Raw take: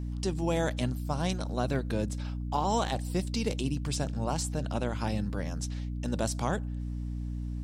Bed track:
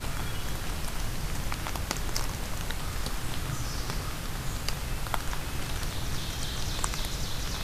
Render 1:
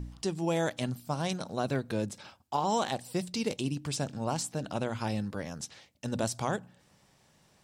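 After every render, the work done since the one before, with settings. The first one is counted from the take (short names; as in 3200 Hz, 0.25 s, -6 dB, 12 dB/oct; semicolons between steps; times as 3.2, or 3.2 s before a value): de-hum 60 Hz, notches 5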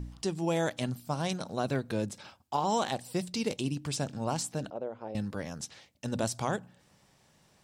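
4.7–5.15 band-pass 500 Hz, Q 2.1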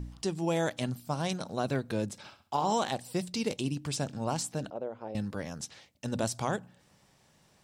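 2.16–2.73 flutter echo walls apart 11.2 m, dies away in 0.37 s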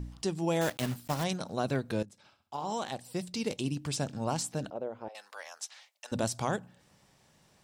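0.61–1.24 block floating point 3-bit; 2.03–3.79 fade in, from -16.5 dB; 5.08–6.12 HPF 720 Hz 24 dB/oct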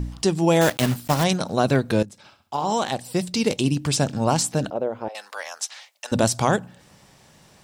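gain +11.5 dB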